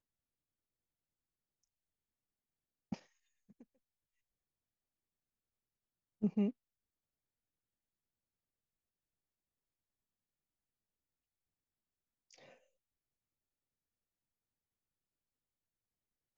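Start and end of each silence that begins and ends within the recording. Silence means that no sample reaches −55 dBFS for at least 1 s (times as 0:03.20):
0:03.63–0:06.22
0:06.51–0:12.31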